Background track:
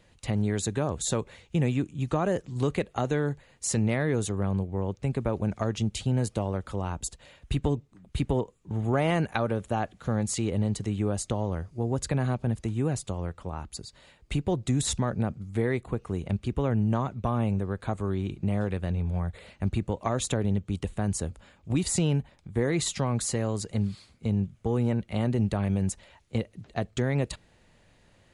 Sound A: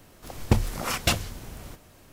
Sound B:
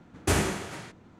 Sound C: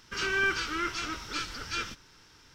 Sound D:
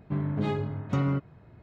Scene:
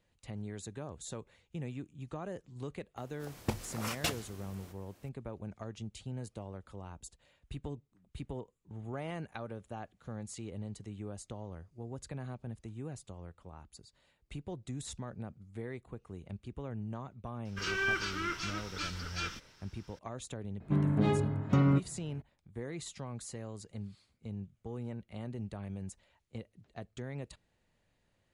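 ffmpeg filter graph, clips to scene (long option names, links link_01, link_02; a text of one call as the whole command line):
ffmpeg -i bed.wav -i cue0.wav -i cue1.wav -i cue2.wav -i cue3.wav -filter_complex "[0:a]volume=-15dB[link_01];[1:a]highpass=frequency=160:poles=1[link_02];[4:a]equalizer=frequency=230:width=1.1:gain=3[link_03];[link_02]atrim=end=2.12,asetpts=PTS-STARTPTS,volume=-9.5dB,afade=type=in:duration=0.004:curve=hsin,afade=type=out:start_time=2.116:duration=0.004:curve=hsin,adelay=2970[link_04];[3:a]atrim=end=2.54,asetpts=PTS-STARTPTS,volume=-4.5dB,afade=type=in:duration=0.004:curve=hsin,afade=type=out:start_time=2.536:duration=0.004:curve=hsin,adelay=17450[link_05];[link_03]atrim=end=1.62,asetpts=PTS-STARTPTS,volume=-1dB,afade=type=in:duration=0.004:curve=hsin,afade=type=out:start_time=1.616:duration=0.004:curve=hsin,adelay=20600[link_06];[link_01][link_04][link_05][link_06]amix=inputs=4:normalize=0" out.wav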